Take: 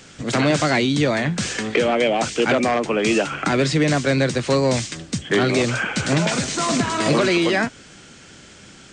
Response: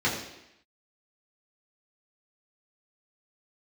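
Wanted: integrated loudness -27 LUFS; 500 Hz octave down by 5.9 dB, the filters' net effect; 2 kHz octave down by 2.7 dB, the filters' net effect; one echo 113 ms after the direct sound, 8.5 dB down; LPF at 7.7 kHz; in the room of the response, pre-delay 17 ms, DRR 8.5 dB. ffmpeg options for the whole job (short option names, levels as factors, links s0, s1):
-filter_complex "[0:a]lowpass=7700,equalizer=f=500:t=o:g=-7.5,equalizer=f=2000:t=o:g=-3,aecho=1:1:113:0.376,asplit=2[s0][s1];[1:a]atrim=start_sample=2205,adelay=17[s2];[s1][s2]afir=irnorm=-1:irlink=0,volume=0.0891[s3];[s0][s3]amix=inputs=2:normalize=0,volume=0.501"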